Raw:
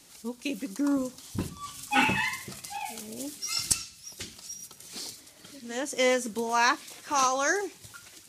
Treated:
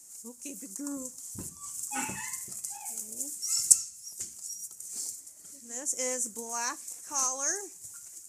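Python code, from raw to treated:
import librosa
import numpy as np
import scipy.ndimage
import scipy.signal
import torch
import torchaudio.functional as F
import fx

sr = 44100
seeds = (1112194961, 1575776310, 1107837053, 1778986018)

y = fx.high_shelf_res(x, sr, hz=5200.0, db=13.0, q=3.0)
y = y * 10.0 ** (-11.5 / 20.0)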